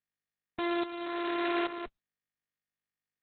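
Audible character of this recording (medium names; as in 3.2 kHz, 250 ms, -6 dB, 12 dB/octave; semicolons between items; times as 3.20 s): a buzz of ramps at a fixed pitch in blocks of 128 samples; tremolo saw up 1.2 Hz, depth 75%; a quantiser's noise floor 10-bit, dither none; Opus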